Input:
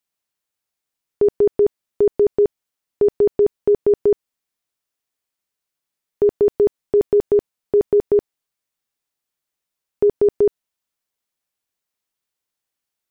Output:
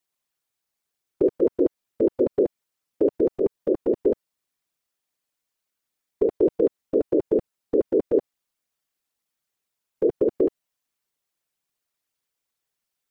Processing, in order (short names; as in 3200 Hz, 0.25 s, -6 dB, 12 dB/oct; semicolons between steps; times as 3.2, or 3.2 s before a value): limiter -15 dBFS, peak gain reduction 5.5 dB; whisperiser